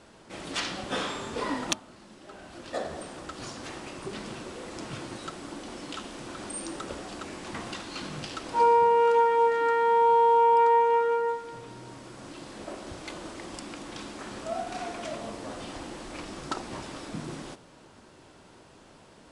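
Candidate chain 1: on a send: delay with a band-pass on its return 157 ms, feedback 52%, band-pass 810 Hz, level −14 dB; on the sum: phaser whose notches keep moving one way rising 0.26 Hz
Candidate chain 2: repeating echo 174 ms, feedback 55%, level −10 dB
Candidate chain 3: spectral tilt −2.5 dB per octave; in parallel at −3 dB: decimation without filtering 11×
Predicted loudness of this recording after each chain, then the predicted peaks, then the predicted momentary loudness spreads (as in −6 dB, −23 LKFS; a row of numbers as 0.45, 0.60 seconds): −29.0, −24.5, −22.5 LKFS; −9.0, −10.0, −6.5 dBFS; 19, 20, 20 LU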